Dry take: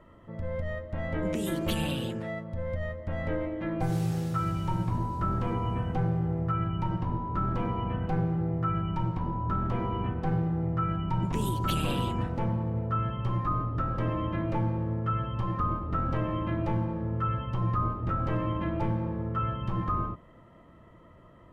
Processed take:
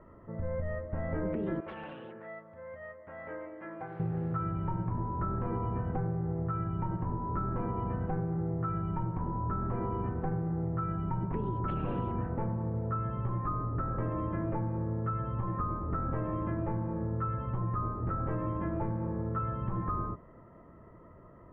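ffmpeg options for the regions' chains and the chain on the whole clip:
-filter_complex "[0:a]asettb=1/sr,asplit=3[s0][s1][s2];[s0]atrim=end=1.604[s3];[s1]atrim=start=1.6:end=4,asetpts=PTS-STARTPTS,afade=t=in:d=0.004:c=qsin,afade=t=out:st=2.396:d=0.004:c=qsin,highpass=f=1500:p=1,highshelf=f=9100:g=-11.5,aeval=exprs='(mod(28.2*val(0)+1,2)-1)/28.2':c=same[s4];[s2]atrim=start=3.996[s5];[s3][s4]acrossfade=d=0.004:c1=hsin:c2=qsin[s6];[s6][s5]acrossfade=d=0.004:c1=qsin:c2=hsin,lowpass=f=1800:w=0.5412,lowpass=f=1800:w=1.3066,equalizer=f=410:w=6.9:g=6,acompressor=threshold=0.0355:ratio=6"

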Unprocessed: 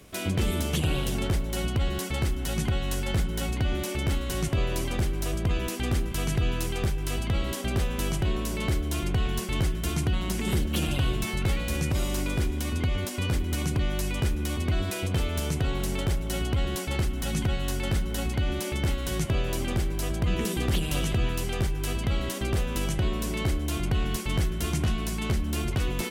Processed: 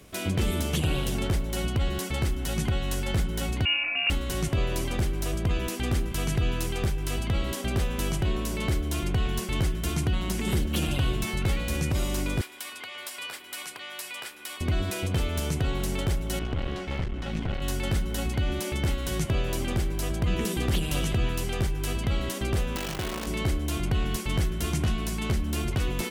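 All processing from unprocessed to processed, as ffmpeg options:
-filter_complex "[0:a]asettb=1/sr,asplit=3[s0][s1][s2];[s0]atrim=end=3.654[s3];[s1]atrim=start=3.65:end=4.1,asetpts=PTS-STARTPTS,afade=t=in:d=0.004:c=qsin,afade=t=out:st=0.446:d=0.004:c=qsin,equalizer=f=540:t=o:w=0.44:g=11,lowpass=f=2500:t=q:w=0.5098,lowpass=f=2500:t=q:w=0.6013,lowpass=f=2500:t=q:w=0.9,lowpass=f=2500:t=q:w=2.563,afreqshift=-2900[s4];[s2]atrim=start=4.096[s5];[s3][s4]acrossfade=d=0.004:c1=hsin:c2=qsin[s6];[s6][s5]acrossfade=d=0.004:c1=qsin:c2=hsin,asettb=1/sr,asplit=3[s7][s8][s9];[s7]atrim=end=12.414[s10];[s8]atrim=start=12.41:end=14.61,asetpts=PTS-STARTPTS,afade=t=in:d=0.004:c=qsin,afade=t=out:st=2.196:d=0.004:c=qsin,highpass=1000,equalizer=f=6300:w=4.3:g=-6[s11];[s9]atrim=start=14.606[s12];[s10][s11]acrossfade=d=0.004:c1=hsin:c2=qsin[s13];[s13][s12]acrossfade=d=0.004:c1=qsin:c2=hsin,asettb=1/sr,asplit=3[s14][s15][s16];[s14]atrim=end=16.394[s17];[s15]atrim=start=16.39:end=17.62,asetpts=PTS-STARTPTS,afade=t=in:d=0.004:c=qsin,afade=t=out:st=1.226:d=0.004:c=qsin,lowpass=3200,bandreject=f=50:t=h:w=6,bandreject=f=100:t=h:w=6,bandreject=f=150:t=h:w=6,bandreject=f=200:t=h:w=6,bandreject=f=250:t=h:w=6,bandreject=f=300:t=h:w=6,bandreject=f=350:t=h:w=6,bandreject=f=400:t=h:w=6,bandreject=f=450:t=h:w=6,aeval=exprs='clip(val(0),-1,0.0224)':c=same[s18];[s16]atrim=start=17.616[s19];[s17][s18]acrossfade=d=0.004:c1=hsin:c2=qsin[s20];[s20][s19]acrossfade=d=0.004:c1=qsin:c2=hsin,asettb=1/sr,asplit=3[s21][s22][s23];[s21]atrim=end=22.764[s24];[s22]atrim=start=22.76:end=23.27,asetpts=PTS-STARTPTS,afade=t=in:d=0.004:c=qsin,afade=t=out:st=0.506:d=0.004:c=qsin,lowpass=4000,acrusher=bits=6:dc=4:mix=0:aa=0.000001,lowshelf=f=200:g=-10.5[s25];[s23]atrim=start=23.266[s26];[s24][s25]acrossfade=d=0.004:c1=hsin:c2=qsin[s27];[s27][s26]acrossfade=d=0.004:c1=qsin:c2=hsin"

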